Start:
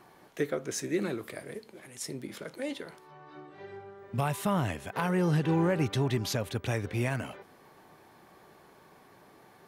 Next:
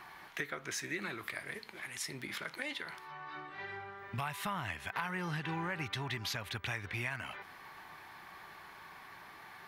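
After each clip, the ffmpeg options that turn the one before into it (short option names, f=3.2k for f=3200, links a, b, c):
-af "equalizer=f=125:t=o:w=1:g=-5,equalizer=f=250:t=o:w=1:g=-7,equalizer=f=500:t=o:w=1:g=-11,equalizer=f=1k:t=o:w=1:g=4,equalizer=f=2k:t=o:w=1:g=7,equalizer=f=4k:t=o:w=1:g=3,equalizer=f=8k:t=o:w=1:g=-5,acompressor=threshold=-42dB:ratio=3,volume=4dB"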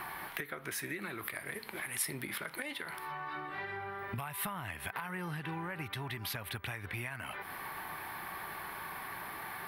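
-af "aemphasis=mode=reproduction:type=50fm,acompressor=threshold=-48dB:ratio=5,aexciter=amount=15.3:drive=5.2:freq=9.5k,volume=10dB"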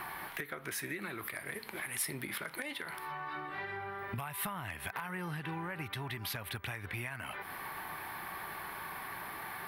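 -af "asoftclip=type=hard:threshold=-27.5dB"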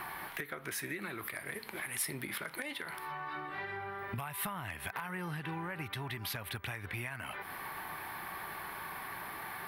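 -af anull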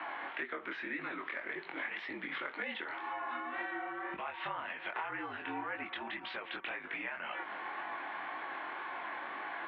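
-af "flanger=delay=19:depth=5.9:speed=1.9,highpass=f=320:t=q:w=0.5412,highpass=f=320:t=q:w=1.307,lowpass=f=3.4k:t=q:w=0.5176,lowpass=f=3.4k:t=q:w=0.7071,lowpass=f=3.4k:t=q:w=1.932,afreqshift=-50,volume=5dB"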